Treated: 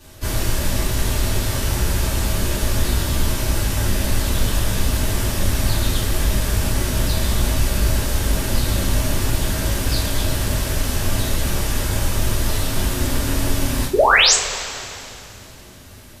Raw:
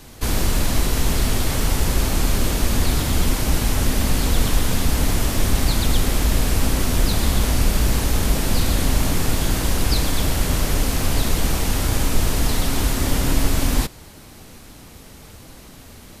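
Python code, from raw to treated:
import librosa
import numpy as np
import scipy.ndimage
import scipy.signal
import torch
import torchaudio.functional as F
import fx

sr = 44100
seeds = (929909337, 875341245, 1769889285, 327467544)

y = fx.spec_paint(x, sr, seeds[0], shape='rise', start_s=13.93, length_s=0.41, low_hz=350.0, high_hz=8500.0, level_db=-12.0)
y = fx.rev_double_slope(y, sr, seeds[1], early_s=0.26, late_s=2.8, knee_db=-18, drr_db=-7.5)
y = F.gain(torch.from_numpy(y), -8.5).numpy()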